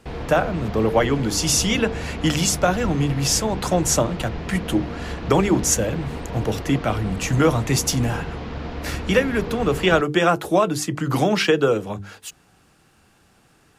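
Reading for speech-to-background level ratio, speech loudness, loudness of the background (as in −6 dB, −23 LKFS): 10.5 dB, −21.0 LKFS, −31.5 LKFS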